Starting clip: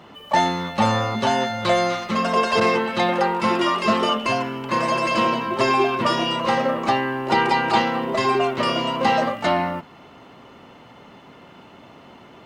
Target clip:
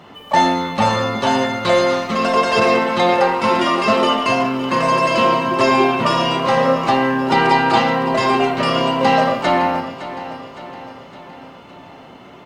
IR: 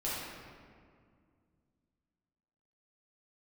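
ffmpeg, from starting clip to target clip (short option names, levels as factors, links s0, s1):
-filter_complex "[0:a]aecho=1:1:562|1124|1686|2248|2810:0.211|0.112|0.0594|0.0315|0.0167,asplit=2[s0][s1];[1:a]atrim=start_sample=2205,atrim=end_sample=6174,asetrate=38367,aresample=44100[s2];[s1][s2]afir=irnorm=-1:irlink=0,volume=0.501[s3];[s0][s3]amix=inputs=2:normalize=0"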